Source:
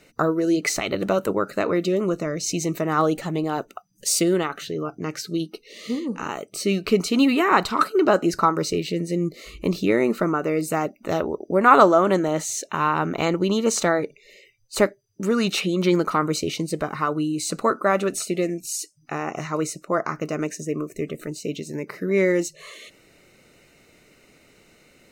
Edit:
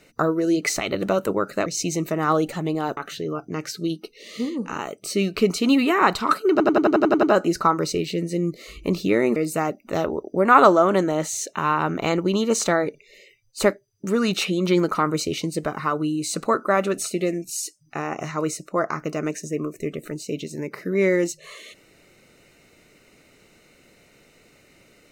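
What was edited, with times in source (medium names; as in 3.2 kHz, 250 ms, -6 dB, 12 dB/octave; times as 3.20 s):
1.66–2.35 s: delete
3.66–4.47 s: delete
8.01 s: stutter 0.09 s, 9 plays
10.14–10.52 s: delete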